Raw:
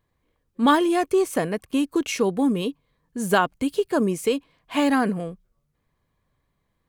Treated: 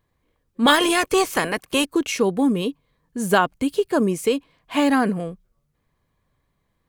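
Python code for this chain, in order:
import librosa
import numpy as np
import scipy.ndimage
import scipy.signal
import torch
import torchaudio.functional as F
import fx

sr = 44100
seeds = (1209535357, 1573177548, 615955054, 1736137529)

y = fx.spec_clip(x, sr, under_db=17, at=(0.65, 1.84), fade=0.02)
y = F.gain(torch.from_numpy(y), 2.0).numpy()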